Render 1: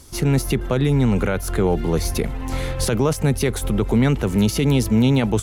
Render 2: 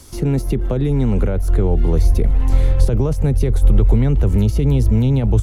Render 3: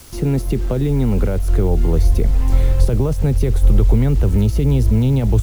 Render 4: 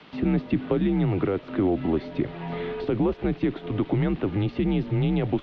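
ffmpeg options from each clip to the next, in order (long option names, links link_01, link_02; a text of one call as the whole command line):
ffmpeg -i in.wav -filter_complex "[0:a]acrossover=split=230|690[link_01][link_02][link_03];[link_01]acompressor=threshold=-19dB:ratio=4[link_04];[link_02]acompressor=threshold=-22dB:ratio=4[link_05];[link_03]acompressor=threshold=-42dB:ratio=4[link_06];[link_04][link_05][link_06]amix=inputs=3:normalize=0,asubboost=boost=6.5:cutoff=85,volume=3dB" out.wav
ffmpeg -i in.wav -af "acrusher=bits=6:mix=0:aa=0.000001" out.wav
ffmpeg -i in.wav -af "highpass=frequency=240:width_type=q:width=0.5412,highpass=frequency=240:width_type=q:width=1.307,lowpass=frequency=3600:width_type=q:width=0.5176,lowpass=frequency=3600:width_type=q:width=0.7071,lowpass=frequency=3600:width_type=q:width=1.932,afreqshift=-94" out.wav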